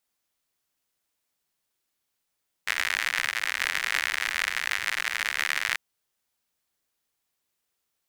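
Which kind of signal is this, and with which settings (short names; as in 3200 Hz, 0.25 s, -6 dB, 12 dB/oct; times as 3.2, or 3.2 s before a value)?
rain from filtered ticks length 3.09 s, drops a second 94, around 1900 Hz, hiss -30 dB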